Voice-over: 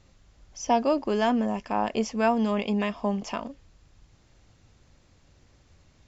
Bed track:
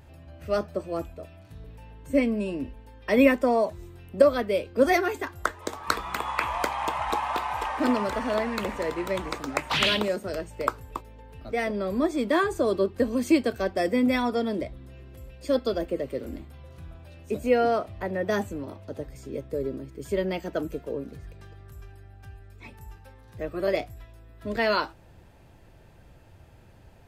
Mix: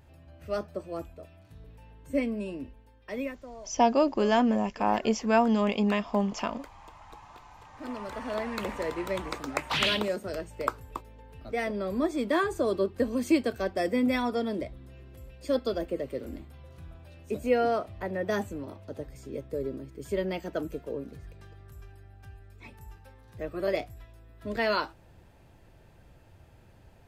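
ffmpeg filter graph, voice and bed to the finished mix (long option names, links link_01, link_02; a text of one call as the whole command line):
ffmpeg -i stem1.wav -i stem2.wav -filter_complex "[0:a]adelay=3100,volume=0.5dB[link_01];[1:a]volume=14dB,afade=type=out:start_time=2.48:duration=0.93:silence=0.141254,afade=type=in:start_time=7.71:duration=0.98:silence=0.105925[link_02];[link_01][link_02]amix=inputs=2:normalize=0" out.wav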